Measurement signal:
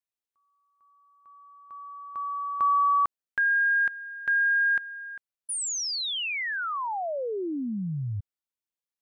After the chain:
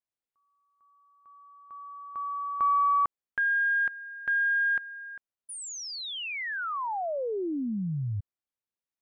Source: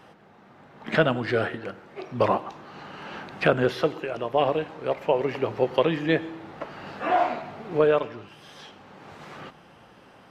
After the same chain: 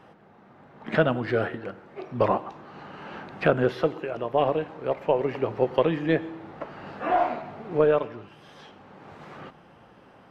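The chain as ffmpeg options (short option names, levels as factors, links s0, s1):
-af "highshelf=f=2700:g=-9.5,aeval=exprs='0.447*(cos(1*acos(clip(val(0)/0.447,-1,1)))-cos(1*PI/2))+0.0251*(cos(2*acos(clip(val(0)/0.447,-1,1)))-cos(2*PI/2))':c=same"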